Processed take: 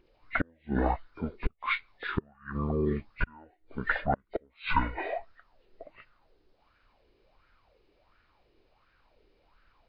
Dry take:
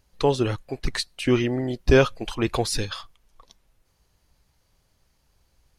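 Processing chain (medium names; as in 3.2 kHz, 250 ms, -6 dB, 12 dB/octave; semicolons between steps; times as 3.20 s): knee-point frequency compression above 3 kHz 1.5:1; dynamic bell 270 Hz, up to -5 dB, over -34 dBFS, Q 1.4; inverted gate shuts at -13 dBFS, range -38 dB; wide varispeed 0.585×; sweeping bell 1.4 Hz 370–1500 Hz +18 dB; trim -3 dB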